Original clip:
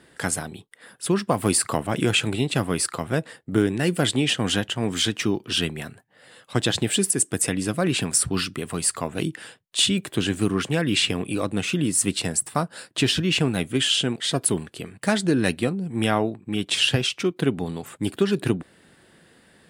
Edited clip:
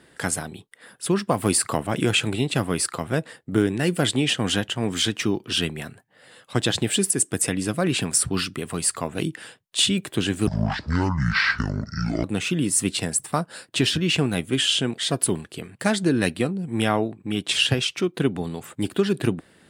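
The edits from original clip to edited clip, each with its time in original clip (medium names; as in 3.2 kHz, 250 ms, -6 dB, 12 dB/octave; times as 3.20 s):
10.47–11.46 s: speed 56%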